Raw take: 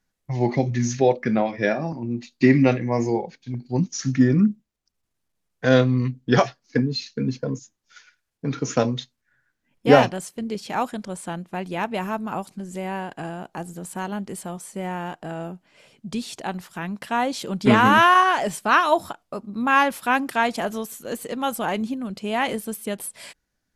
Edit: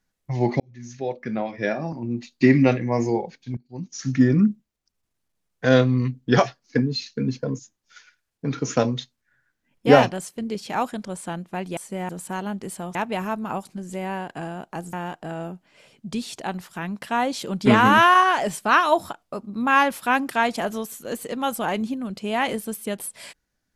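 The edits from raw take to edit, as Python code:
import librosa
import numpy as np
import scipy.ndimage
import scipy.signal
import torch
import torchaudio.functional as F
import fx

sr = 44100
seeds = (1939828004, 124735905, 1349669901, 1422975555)

y = fx.edit(x, sr, fx.fade_in_span(start_s=0.6, length_s=1.51),
    fx.fade_in_from(start_s=3.57, length_s=0.58, curve='qua', floor_db=-18.0),
    fx.swap(start_s=11.77, length_s=1.98, other_s=14.61, other_length_s=0.32), tone=tone)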